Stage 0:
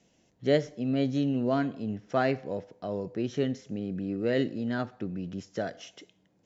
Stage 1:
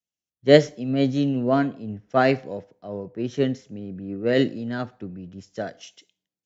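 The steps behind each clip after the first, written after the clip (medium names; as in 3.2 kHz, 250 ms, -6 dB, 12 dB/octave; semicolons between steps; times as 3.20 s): three bands expanded up and down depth 100%; trim +4.5 dB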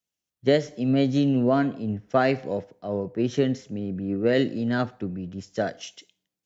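compression 5:1, threshold -22 dBFS, peak gain reduction 13.5 dB; trim +4.5 dB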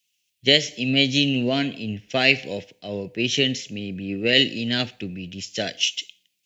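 resonant high shelf 1.8 kHz +13.5 dB, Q 3; trim -1 dB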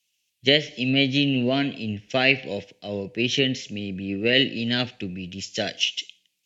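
low-pass that closes with the level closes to 3 kHz, closed at -16.5 dBFS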